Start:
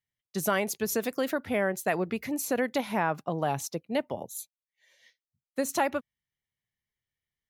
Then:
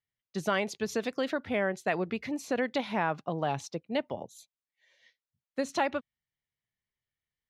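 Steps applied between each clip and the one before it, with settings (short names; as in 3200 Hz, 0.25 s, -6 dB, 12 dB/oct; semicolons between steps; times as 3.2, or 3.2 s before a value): LPF 4900 Hz 12 dB/oct; dynamic EQ 3700 Hz, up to +5 dB, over -48 dBFS, Q 1.4; gain -2 dB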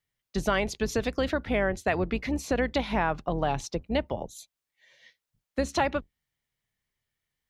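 octaver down 2 oct, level -3 dB; in parallel at +2 dB: compressor, threshold -36 dBFS, peak gain reduction 12.5 dB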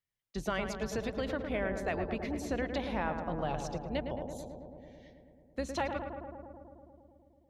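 darkening echo 0.109 s, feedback 82%, low-pass 1700 Hz, level -6 dB; gain -8.5 dB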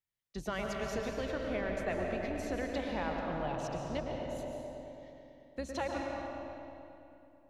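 digital reverb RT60 2.7 s, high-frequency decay 0.8×, pre-delay 0.1 s, DRR 1.5 dB; gain -3.5 dB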